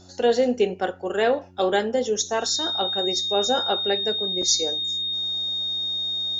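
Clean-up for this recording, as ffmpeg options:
-af "bandreject=f=91.5:t=h:w=4,bandreject=f=183:t=h:w=4,bandreject=f=274.5:t=h:w=4,bandreject=f=366:t=h:w=4,bandreject=f=3.7k:w=30"

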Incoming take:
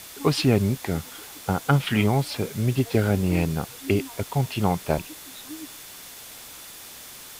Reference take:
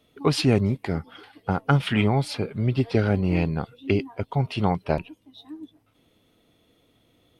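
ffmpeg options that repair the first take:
-af "bandreject=f=3.5k:w=30,afwtdn=0.0089"

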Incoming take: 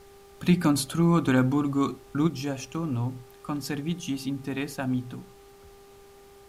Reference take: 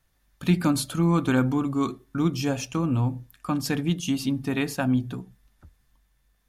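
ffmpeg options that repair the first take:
-af "bandreject=f=398.3:t=h:w=4,bandreject=f=796.6:t=h:w=4,bandreject=f=1.1949k:t=h:w=4,agate=range=-21dB:threshold=-43dB,asetnsamples=n=441:p=0,asendcmd='2.27 volume volume 5dB',volume=0dB"

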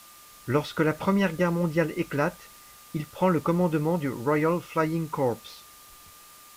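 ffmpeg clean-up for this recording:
-af "adeclick=t=4,bandreject=f=1.2k:w=30,afftdn=nr=21:nf=-50"

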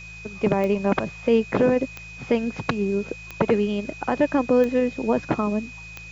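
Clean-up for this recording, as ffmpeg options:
-af "adeclick=t=4,bandreject=f=54.5:t=h:w=4,bandreject=f=109:t=h:w=4,bandreject=f=163.5:t=h:w=4,bandreject=f=2.5k:w=30,afwtdn=0.004"

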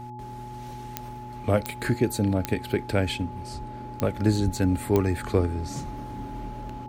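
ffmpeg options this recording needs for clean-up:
-af "adeclick=t=4,bandreject=f=121.3:t=h:w=4,bandreject=f=242.6:t=h:w=4,bandreject=f=363.9:t=h:w=4,bandreject=f=850:w=30"

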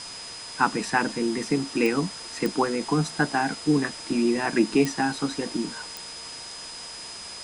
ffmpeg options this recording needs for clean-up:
-af "adeclick=t=4,bandreject=f=5k:w=30,afwtdn=0.011"

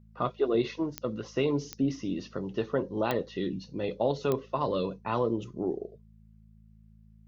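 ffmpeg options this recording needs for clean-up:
-af "adeclick=t=4,bandreject=f=54.2:t=h:w=4,bandreject=f=108.4:t=h:w=4,bandreject=f=162.6:t=h:w=4,bandreject=f=216.8:t=h:w=4"

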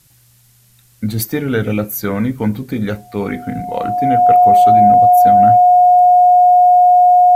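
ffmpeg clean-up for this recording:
-af "bandreject=f=720:w=30,agate=range=-21dB:threshold=-42dB"

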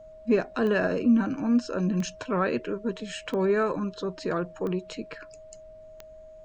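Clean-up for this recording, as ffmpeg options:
-af "adeclick=t=4,bandreject=f=630:w=30,agate=range=-21dB:threshold=-39dB"

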